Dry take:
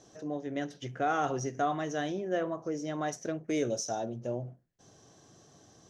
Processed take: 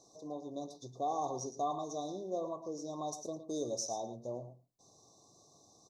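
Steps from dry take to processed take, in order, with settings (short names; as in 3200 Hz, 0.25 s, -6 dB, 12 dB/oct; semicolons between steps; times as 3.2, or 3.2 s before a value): brick-wall FIR band-stop 1200–3500 Hz; low shelf 430 Hz -9.5 dB; echo 0.112 s -11.5 dB; gain -2 dB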